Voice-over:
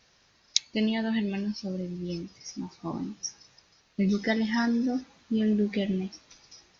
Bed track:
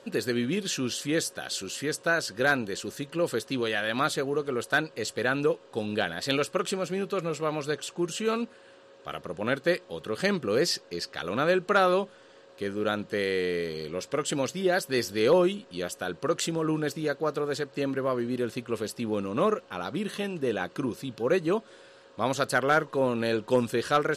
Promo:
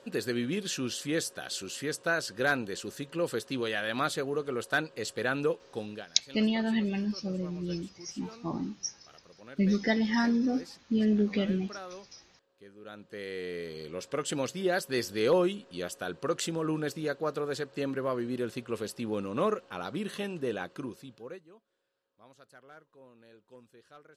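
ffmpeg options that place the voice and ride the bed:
-filter_complex "[0:a]adelay=5600,volume=-0.5dB[a];[1:a]volume=14dB,afade=t=out:st=5.7:d=0.36:silence=0.133352,afade=t=in:st=12.81:d=1.44:silence=0.133352,afade=t=out:st=20.37:d=1.08:silence=0.0473151[b];[a][b]amix=inputs=2:normalize=0"

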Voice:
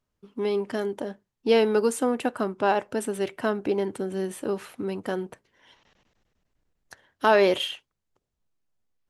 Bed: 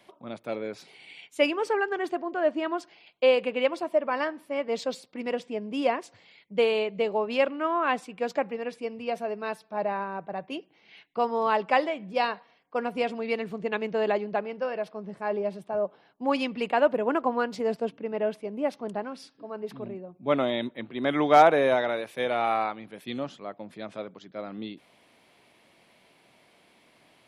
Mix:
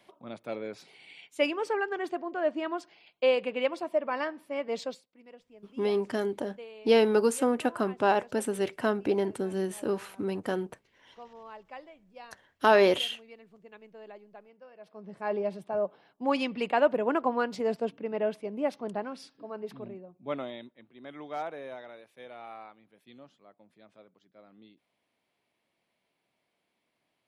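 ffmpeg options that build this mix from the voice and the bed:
-filter_complex "[0:a]adelay=5400,volume=-1.5dB[a];[1:a]volume=17dB,afade=t=out:st=4.83:d=0.22:silence=0.11885,afade=t=in:st=14.78:d=0.54:silence=0.0944061,afade=t=out:st=19.38:d=1.36:silence=0.133352[b];[a][b]amix=inputs=2:normalize=0"

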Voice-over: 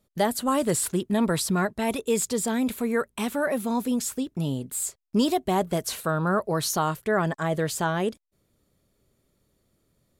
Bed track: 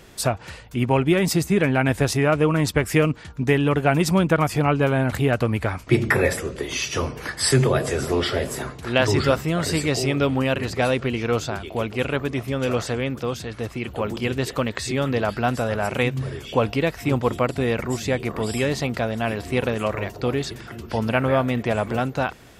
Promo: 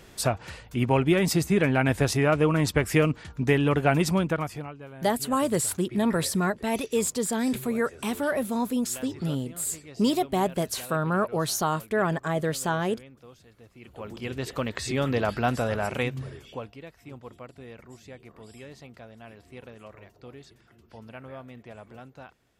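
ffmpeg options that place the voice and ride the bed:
-filter_complex "[0:a]adelay=4850,volume=-1dB[a];[1:a]volume=17.5dB,afade=t=out:st=3.96:d=0.77:silence=0.0944061,afade=t=in:st=13.73:d=1.28:silence=0.0944061,afade=t=out:st=15.67:d=1.04:silence=0.112202[b];[a][b]amix=inputs=2:normalize=0"

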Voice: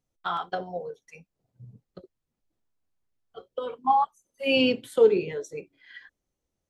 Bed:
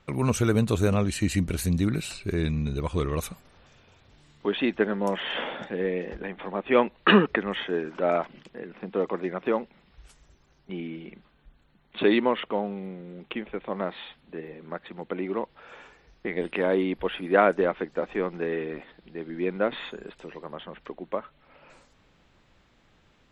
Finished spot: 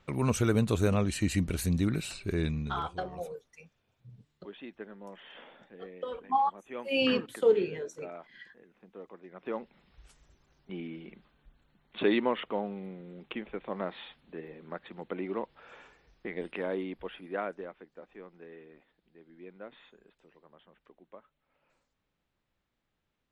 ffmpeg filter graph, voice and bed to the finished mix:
-filter_complex "[0:a]adelay=2450,volume=-5dB[a];[1:a]volume=11.5dB,afade=t=out:st=2.42:d=0.53:silence=0.149624,afade=t=in:st=9.29:d=0.51:silence=0.177828,afade=t=out:st=15.66:d=2.12:silence=0.16788[b];[a][b]amix=inputs=2:normalize=0"

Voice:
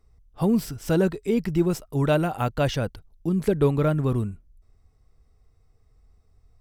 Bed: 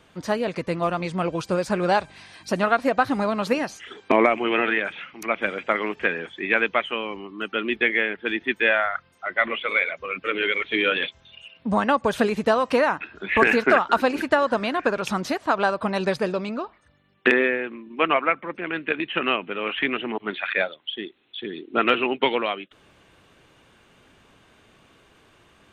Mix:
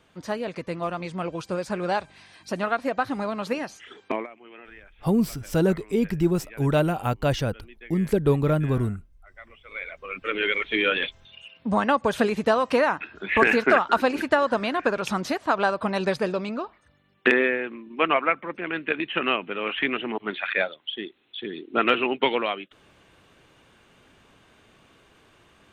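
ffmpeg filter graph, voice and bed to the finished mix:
-filter_complex "[0:a]adelay=4650,volume=0dB[a];[1:a]volume=18.5dB,afade=t=out:st=4.04:d=0.23:silence=0.105925,afade=t=in:st=9.64:d=0.78:silence=0.0668344[b];[a][b]amix=inputs=2:normalize=0"

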